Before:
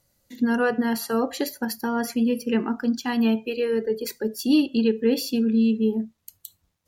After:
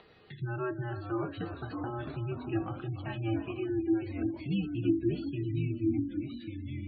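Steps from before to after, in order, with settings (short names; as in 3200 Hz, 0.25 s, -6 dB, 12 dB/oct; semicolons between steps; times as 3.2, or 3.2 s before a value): resonator 440 Hz, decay 0.2 s, harmonics all, mix 80%; echoes that change speed 0.492 s, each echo -2 st, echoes 3, each echo -6 dB; thinning echo 0.302 s, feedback 69%, high-pass 380 Hz, level -11 dB; mistuned SSB -110 Hz 210–3600 Hz; upward compressor, threshold -37 dBFS; spectral gate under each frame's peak -30 dB strong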